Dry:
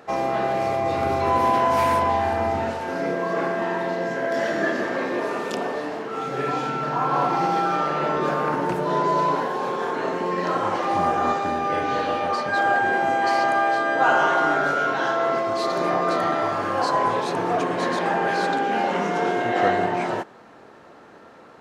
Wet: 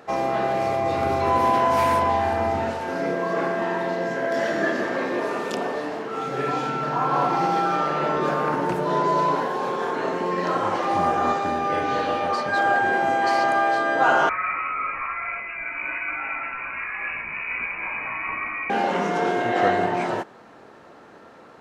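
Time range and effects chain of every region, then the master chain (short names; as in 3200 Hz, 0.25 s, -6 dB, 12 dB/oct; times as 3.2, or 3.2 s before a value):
14.29–18.7 band shelf 780 Hz -9 dB 1.3 oct + chorus 1.3 Hz, delay 15.5 ms, depth 3.7 ms + inverted band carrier 2700 Hz
whole clip: dry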